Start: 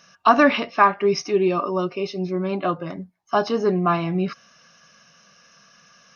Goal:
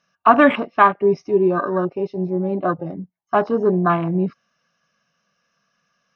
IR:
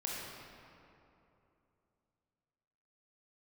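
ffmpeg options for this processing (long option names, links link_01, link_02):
-af "aemphasis=mode=reproduction:type=50kf,afwtdn=0.0398,volume=3dB"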